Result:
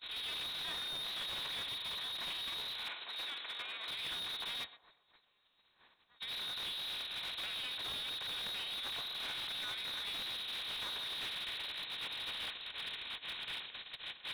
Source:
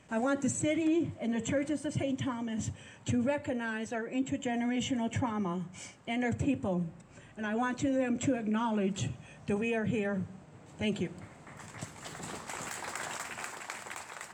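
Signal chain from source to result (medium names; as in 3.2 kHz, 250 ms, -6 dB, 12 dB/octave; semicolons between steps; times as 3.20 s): spectral levelling over time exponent 0.4; in parallel at -8 dB: fuzz box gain 42 dB, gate -43 dBFS; 4.64–6.19 s: on the sum: FFT filter 140 Hz 0 dB, 1 kHz +2 dB, 3.1 kHz +13 dB; peak limiter -16 dBFS, peak gain reduction 14.5 dB; gate -19 dBFS, range -50 dB; frequency inversion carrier 4 kHz; 2.88–3.88 s: three-band isolator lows -18 dB, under 250 Hz, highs -14 dB, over 2.9 kHz; on a send: band-passed feedback delay 123 ms, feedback 42%, band-pass 670 Hz, level -12 dB; on the sum: slew-rate limiter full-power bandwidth 36 Hz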